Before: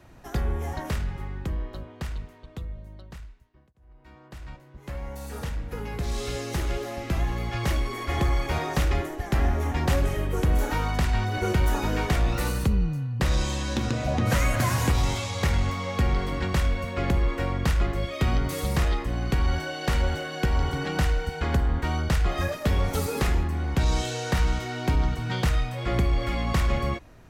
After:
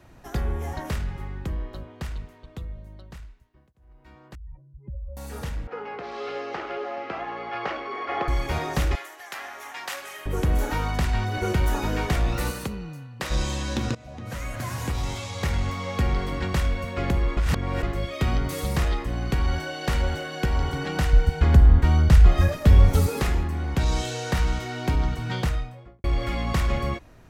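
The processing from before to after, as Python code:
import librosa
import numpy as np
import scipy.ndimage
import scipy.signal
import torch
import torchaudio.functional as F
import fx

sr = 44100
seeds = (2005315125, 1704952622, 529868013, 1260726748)

y = fx.spec_expand(x, sr, power=2.9, at=(4.35, 5.17))
y = fx.cabinet(y, sr, low_hz=380.0, low_slope=12, high_hz=4000.0, hz=(450.0, 760.0, 1300.0, 3700.0), db=(5, 7, 7, -7), at=(5.67, 8.28))
y = fx.highpass(y, sr, hz=1100.0, slope=12, at=(8.95, 10.26))
y = fx.highpass(y, sr, hz=fx.line((12.5, 280.0), (13.3, 590.0)), slope=6, at=(12.5, 13.3), fade=0.02)
y = fx.low_shelf(y, sr, hz=170.0, db=12.0, at=(21.13, 23.09))
y = fx.studio_fade_out(y, sr, start_s=25.3, length_s=0.74)
y = fx.edit(y, sr, fx.fade_in_from(start_s=13.95, length_s=1.98, floor_db=-20.0),
    fx.reverse_span(start_s=17.37, length_s=0.46), tone=tone)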